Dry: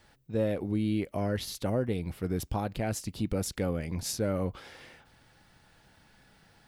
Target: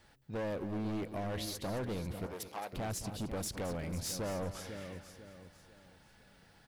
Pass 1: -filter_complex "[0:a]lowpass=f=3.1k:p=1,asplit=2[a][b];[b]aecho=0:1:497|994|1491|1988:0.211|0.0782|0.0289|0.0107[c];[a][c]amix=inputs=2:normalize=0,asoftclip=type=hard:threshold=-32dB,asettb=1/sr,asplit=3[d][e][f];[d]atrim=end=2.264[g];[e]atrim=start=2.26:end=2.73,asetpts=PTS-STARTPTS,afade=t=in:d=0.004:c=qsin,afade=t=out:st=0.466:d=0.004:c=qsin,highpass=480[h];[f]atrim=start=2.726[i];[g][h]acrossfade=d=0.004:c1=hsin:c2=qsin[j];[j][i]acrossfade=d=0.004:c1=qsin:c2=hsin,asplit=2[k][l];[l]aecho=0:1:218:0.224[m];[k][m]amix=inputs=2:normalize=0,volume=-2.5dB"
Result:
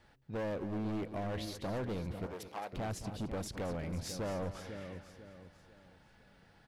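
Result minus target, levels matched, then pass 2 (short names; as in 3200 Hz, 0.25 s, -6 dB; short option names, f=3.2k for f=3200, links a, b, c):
4000 Hz band -3.0 dB
-filter_complex "[0:a]asplit=2[a][b];[b]aecho=0:1:497|994|1491|1988:0.211|0.0782|0.0289|0.0107[c];[a][c]amix=inputs=2:normalize=0,asoftclip=type=hard:threshold=-32dB,asettb=1/sr,asplit=3[d][e][f];[d]atrim=end=2.264[g];[e]atrim=start=2.26:end=2.73,asetpts=PTS-STARTPTS,afade=t=in:d=0.004:c=qsin,afade=t=out:st=0.466:d=0.004:c=qsin,highpass=480[h];[f]atrim=start=2.726[i];[g][h]acrossfade=d=0.004:c1=hsin:c2=qsin[j];[j][i]acrossfade=d=0.004:c1=qsin:c2=hsin,asplit=2[k][l];[l]aecho=0:1:218:0.224[m];[k][m]amix=inputs=2:normalize=0,volume=-2.5dB"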